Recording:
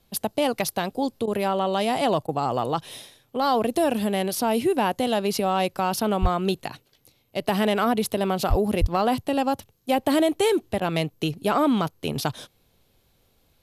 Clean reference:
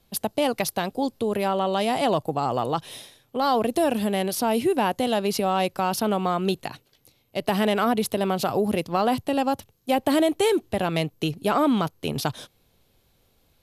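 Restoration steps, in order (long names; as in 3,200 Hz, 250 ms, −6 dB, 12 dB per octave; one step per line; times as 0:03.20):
clipped peaks rebuilt −11.5 dBFS
0:06.21–0:06.33: high-pass filter 140 Hz 24 dB per octave
0:08.49–0:08.61: high-pass filter 140 Hz 24 dB per octave
0:08.80–0:08.92: high-pass filter 140 Hz 24 dB per octave
repair the gap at 0:01.26/0:02.27/0:10.80, 13 ms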